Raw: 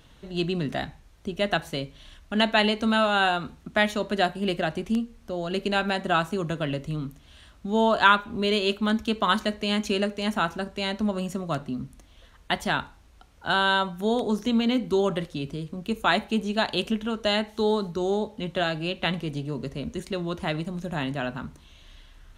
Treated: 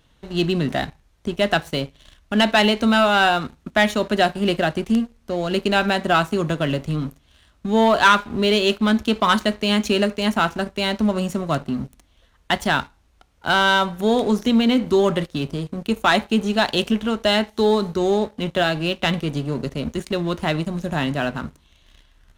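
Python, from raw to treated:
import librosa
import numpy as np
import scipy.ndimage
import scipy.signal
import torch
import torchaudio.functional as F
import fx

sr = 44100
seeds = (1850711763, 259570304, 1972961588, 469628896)

y = fx.leveller(x, sr, passes=2)
y = y * librosa.db_to_amplitude(-1.0)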